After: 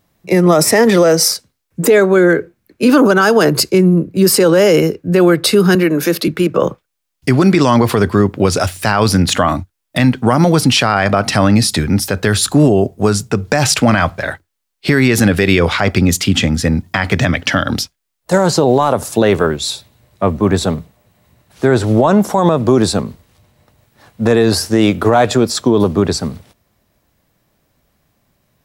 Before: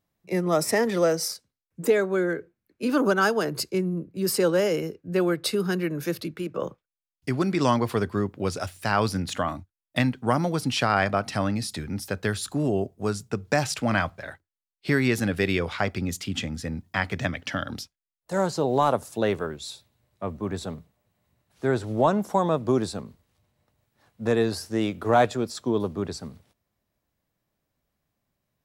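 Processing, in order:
0:05.75–0:06.28: high-pass filter 180 Hz 24 dB per octave
boost into a limiter +18.5 dB
level −1 dB

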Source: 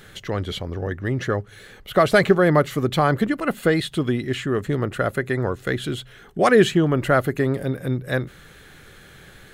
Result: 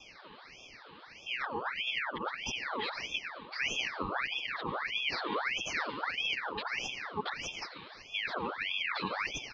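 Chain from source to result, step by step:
played backwards from end to start
comb filter 7.5 ms, depth 67%
compressor whose output falls as the input rises −22 dBFS, ratio −0.5
brickwall limiter −15 dBFS, peak gain reduction 7.5 dB
elliptic band-stop filter 490–2,200 Hz
dense smooth reverb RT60 1.3 s, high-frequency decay 0.8×, pre-delay 80 ms, DRR 5 dB
single-sideband voice off tune +51 Hz 150–3,200 Hz
ring modulator whose carrier an LFO sweeps 1,800 Hz, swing 65%, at 1.6 Hz
level −5 dB

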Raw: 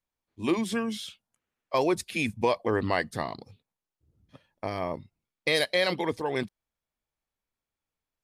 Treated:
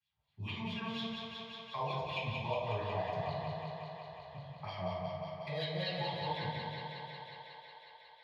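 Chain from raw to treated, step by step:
running median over 5 samples
drawn EQ curve 160 Hz 0 dB, 260 Hz −27 dB, 880 Hz −14 dB, 1,300 Hz −21 dB, 12,000 Hz +2 dB
downward compressor 2 to 1, threshold −43 dBFS, peak gain reduction 6.5 dB
LFO wah 4.3 Hz 580–3,500 Hz, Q 2.9
feedback echo with a high-pass in the loop 182 ms, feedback 74%, high-pass 260 Hz, level −5 dB
convolution reverb RT60 1.2 s, pre-delay 3 ms, DRR −10 dB
multiband upward and downward compressor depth 40%
level −2.5 dB

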